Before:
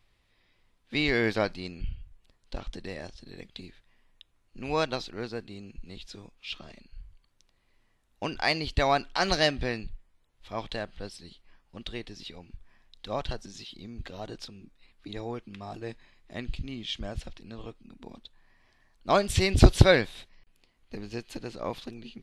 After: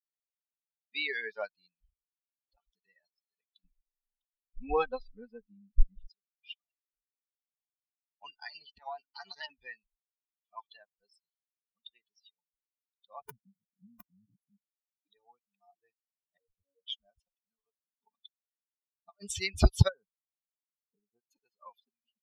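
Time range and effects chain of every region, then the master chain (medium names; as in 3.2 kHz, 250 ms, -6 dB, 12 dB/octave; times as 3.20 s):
3.64–6.10 s: RIAA curve playback + comb 3.9 ms, depth 98%
8.40–9.50 s: transient shaper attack +10 dB, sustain +5 dB + compression 10:1, threshold -21 dBFS + AM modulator 290 Hz, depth 80%
13.21–14.57 s: elliptic band-stop 270–9500 Hz, stop band 50 dB + peaking EQ 140 Hz +14.5 dB 2.9 oct + integer overflow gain 18.5 dB
16.37–16.88 s: comb filter that takes the minimum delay 1.4 ms + robot voice 93.4 Hz + resonant low-pass 470 Hz, resonance Q 5.2
17.97–19.34 s: low-pass 7.5 kHz + compressor with a negative ratio -30 dBFS, ratio -0.5
19.88–21.31 s: brick-wall FIR low-pass 1.6 kHz + compression 20:1, threshold -26 dBFS
whole clip: expander on every frequency bin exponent 3; peaking EQ 300 Hz -11.5 dB 0.78 oct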